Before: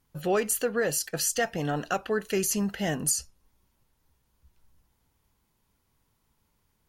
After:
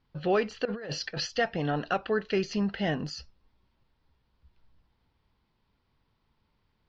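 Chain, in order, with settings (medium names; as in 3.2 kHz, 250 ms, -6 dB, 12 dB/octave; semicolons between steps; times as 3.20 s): steep low-pass 4.9 kHz 48 dB/octave; 0.65–1.27 s: compressor with a negative ratio -35 dBFS, ratio -1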